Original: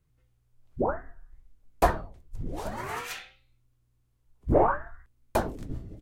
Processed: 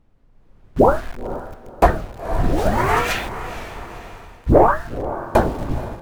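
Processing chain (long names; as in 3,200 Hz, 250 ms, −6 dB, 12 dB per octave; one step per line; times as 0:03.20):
0:01.86–0:02.76: parametric band 1,000 Hz −13 dB 0.3 octaves
bit reduction 8 bits
on a send: feedback delay with all-pass diffusion 492 ms, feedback 47%, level −13.5 dB
on the sum: background noise brown −61 dBFS
high-shelf EQ 3,200 Hz −10 dB
in parallel at −9.5 dB: sine wavefolder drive 6 dB, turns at −5 dBFS
on the sum: automatic gain control gain up to 14.5 dB
wow of a warped record 45 rpm, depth 100 cents
level −1 dB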